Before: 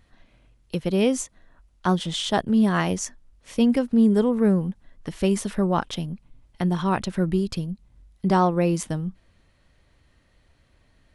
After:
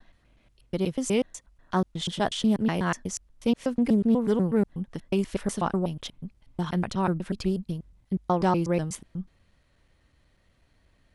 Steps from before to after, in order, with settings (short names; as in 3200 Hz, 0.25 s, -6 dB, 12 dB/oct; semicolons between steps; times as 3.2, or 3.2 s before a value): slices in reverse order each 0.122 s, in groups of 2; vibrato 0.68 Hz 12 cents; Doppler distortion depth 0.14 ms; gain -3.5 dB